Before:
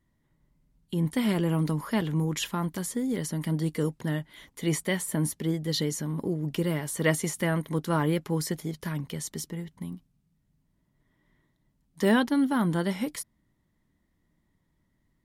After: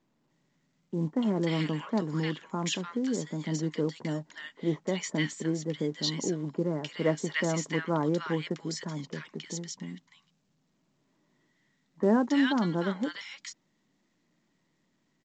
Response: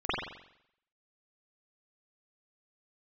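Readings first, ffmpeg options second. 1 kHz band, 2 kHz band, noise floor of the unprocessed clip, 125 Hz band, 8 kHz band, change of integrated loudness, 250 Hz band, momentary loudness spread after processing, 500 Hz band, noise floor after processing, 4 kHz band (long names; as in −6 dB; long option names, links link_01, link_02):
−2.0 dB, −1.5 dB, −73 dBFS, −5.0 dB, −4.5 dB, −2.0 dB, −1.5 dB, 12 LU, −0.5 dB, −74 dBFS, 0.0 dB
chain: -filter_complex "[0:a]acrossover=split=150[link_01][link_02];[link_01]acrusher=bits=3:mix=0:aa=0.5[link_03];[link_03][link_02]amix=inputs=2:normalize=0,acrossover=split=1300[link_04][link_05];[link_05]adelay=300[link_06];[link_04][link_06]amix=inputs=2:normalize=0" -ar 16000 -c:a pcm_mulaw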